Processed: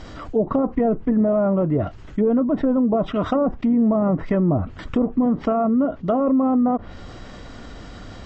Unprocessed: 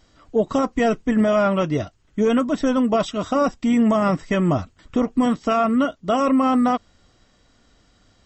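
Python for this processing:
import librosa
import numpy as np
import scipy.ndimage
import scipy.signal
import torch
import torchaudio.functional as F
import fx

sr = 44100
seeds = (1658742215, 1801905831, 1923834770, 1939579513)

y = fx.lowpass(x, sr, hz=2000.0, slope=6)
y = fx.env_lowpass_down(y, sr, base_hz=700.0, full_db=-16.0)
y = fx.env_flatten(y, sr, amount_pct=50)
y = F.gain(torch.from_numpy(y), -1.0).numpy()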